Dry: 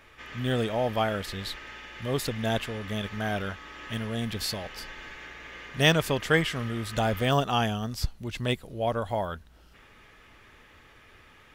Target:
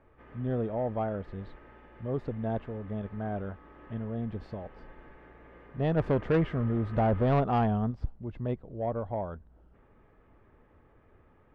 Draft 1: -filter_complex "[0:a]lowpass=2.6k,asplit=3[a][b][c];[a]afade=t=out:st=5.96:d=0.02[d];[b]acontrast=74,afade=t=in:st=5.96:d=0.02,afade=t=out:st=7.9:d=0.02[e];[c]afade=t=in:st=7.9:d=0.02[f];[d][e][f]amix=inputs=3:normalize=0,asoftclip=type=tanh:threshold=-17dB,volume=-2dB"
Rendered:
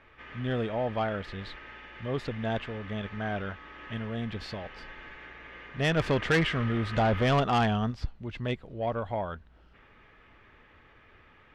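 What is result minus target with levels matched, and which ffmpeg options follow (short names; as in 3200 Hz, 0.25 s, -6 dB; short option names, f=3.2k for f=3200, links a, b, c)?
2000 Hz band +10.5 dB
-filter_complex "[0:a]lowpass=790,asplit=3[a][b][c];[a]afade=t=out:st=5.96:d=0.02[d];[b]acontrast=74,afade=t=in:st=5.96:d=0.02,afade=t=out:st=7.9:d=0.02[e];[c]afade=t=in:st=7.9:d=0.02[f];[d][e][f]amix=inputs=3:normalize=0,asoftclip=type=tanh:threshold=-17dB,volume=-2dB"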